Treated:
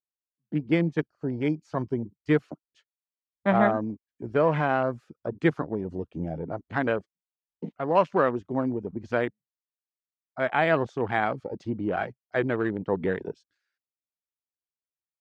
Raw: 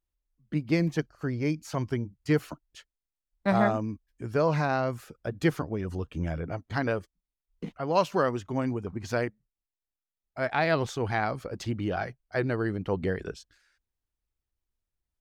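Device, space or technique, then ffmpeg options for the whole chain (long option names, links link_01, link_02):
over-cleaned archive recording: -af "highpass=160,lowpass=6000,afwtdn=0.0126,volume=3dB"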